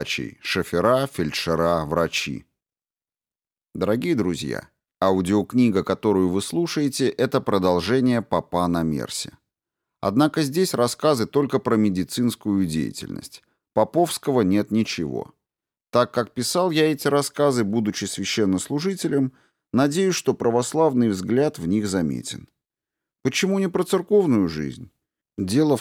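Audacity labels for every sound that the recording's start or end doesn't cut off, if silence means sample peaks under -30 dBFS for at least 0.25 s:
3.760000	4.630000	sound
5.020000	9.290000	sound
10.030000	13.350000	sound
13.770000	15.260000	sound
15.930000	19.280000	sound
19.740000	22.390000	sound
23.250000	24.840000	sound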